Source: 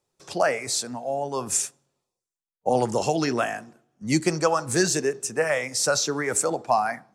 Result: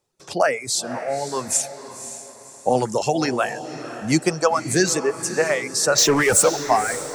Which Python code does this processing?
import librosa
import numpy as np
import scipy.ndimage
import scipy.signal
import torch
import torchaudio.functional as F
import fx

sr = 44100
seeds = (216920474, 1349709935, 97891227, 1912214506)

y = fx.power_curve(x, sr, exponent=0.5, at=(5.98, 6.49))
y = fx.dereverb_blind(y, sr, rt60_s=0.92)
y = fx.echo_diffused(y, sr, ms=534, feedback_pct=41, wet_db=-11.5)
y = y * 10.0 ** (3.5 / 20.0)